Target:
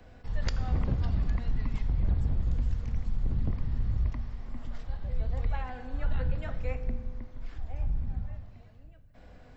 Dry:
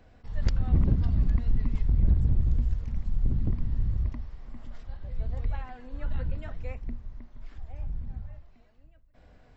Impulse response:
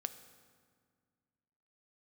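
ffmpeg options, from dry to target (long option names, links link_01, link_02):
-filter_complex "[0:a]acrossover=split=270|440|900[link_01][link_02][link_03][link_04];[link_01]alimiter=limit=-24dB:level=0:latency=1:release=494[link_05];[link_02]acompressor=threshold=-59dB:ratio=6[link_06];[link_05][link_06][link_03][link_04]amix=inputs=4:normalize=0[link_07];[1:a]atrim=start_sample=2205[link_08];[link_07][link_08]afir=irnorm=-1:irlink=0,volume=5.5dB"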